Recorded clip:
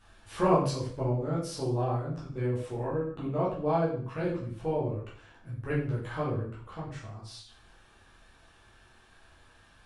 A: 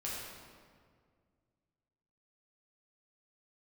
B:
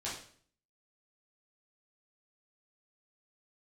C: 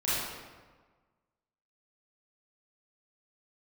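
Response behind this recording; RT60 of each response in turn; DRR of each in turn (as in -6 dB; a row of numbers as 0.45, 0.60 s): B; 2.0, 0.50, 1.4 s; -6.5, -8.0, -11.5 dB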